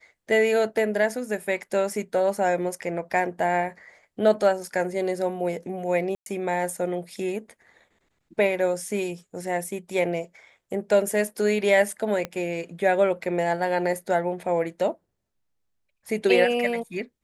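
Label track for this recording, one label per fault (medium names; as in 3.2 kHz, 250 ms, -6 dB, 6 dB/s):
6.150000	6.260000	dropout 112 ms
12.250000	12.250000	pop -15 dBFS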